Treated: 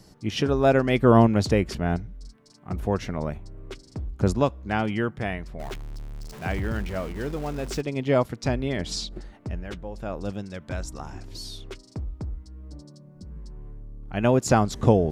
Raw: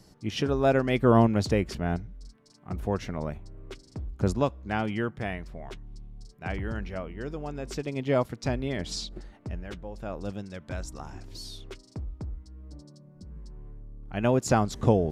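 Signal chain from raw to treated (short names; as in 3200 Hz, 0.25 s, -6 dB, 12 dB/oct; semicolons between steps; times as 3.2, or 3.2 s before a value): 5.59–7.81 zero-crossing step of -40 dBFS; gain +3.5 dB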